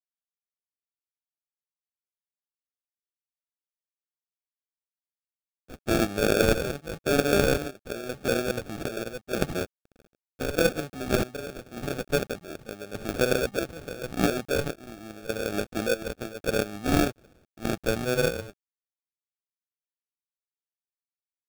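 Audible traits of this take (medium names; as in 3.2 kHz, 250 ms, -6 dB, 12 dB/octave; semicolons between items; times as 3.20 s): a quantiser's noise floor 10-bit, dither none; chopped level 0.85 Hz, depth 65%, duty 55%; aliases and images of a low sample rate 1 kHz, jitter 0%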